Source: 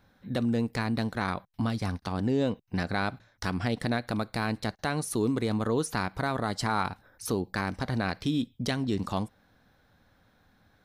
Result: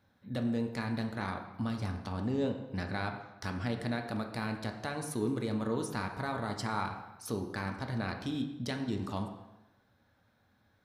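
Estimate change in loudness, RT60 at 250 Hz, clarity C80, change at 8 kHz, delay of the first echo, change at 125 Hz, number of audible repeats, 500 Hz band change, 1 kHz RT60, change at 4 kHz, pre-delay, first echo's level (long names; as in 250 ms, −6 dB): −5.5 dB, 0.95 s, 9.5 dB, −7.0 dB, no echo audible, −5.0 dB, no echo audible, −5.5 dB, 1.0 s, −7.0 dB, 3 ms, no echo audible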